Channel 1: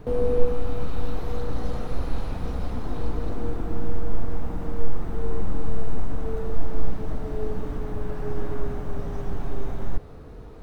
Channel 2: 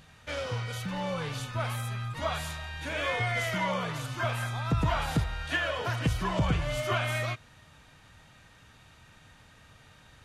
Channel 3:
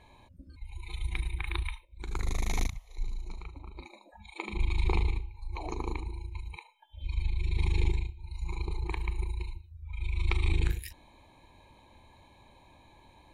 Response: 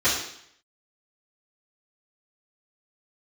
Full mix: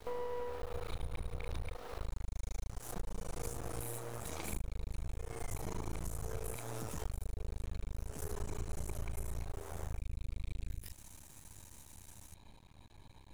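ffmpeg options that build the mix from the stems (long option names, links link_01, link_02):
-filter_complex "[0:a]acrusher=bits=8:mix=0:aa=0.000001,highpass=frequency=390:width=0.5412,highpass=frequency=390:width=1.3066,volume=-3.5dB[link_01];[1:a]aexciter=amount=9.2:drive=5.2:freq=5800,flanger=delay=9.4:depth=4.4:regen=24:speed=1.7:shape=sinusoidal,acrossover=split=180|940[link_02][link_03][link_04];[link_02]acompressor=threshold=-46dB:ratio=4[link_05];[link_03]acompressor=threshold=-40dB:ratio=4[link_06];[link_04]acompressor=threshold=-43dB:ratio=4[link_07];[link_05][link_06][link_07]amix=inputs=3:normalize=0,adelay=2100,volume=-7.5dB[link_08];[2:a]volume=-4dB[link_09];[link_08][link_09]amix=inputs=2:normalize=0,bass=frequency=250:gain=11,treble=frequency=4000:gain=9,alimiter=limit=-17.5dB:level=0:latency=1:release=24,volume=0dB[link_10];[link_01][link_10]amix=inputs=2:normalize=0,aeval=exprs='max(val(0),0)':channel_layout=same,acompressor=threshold=-34dB:ratio=10"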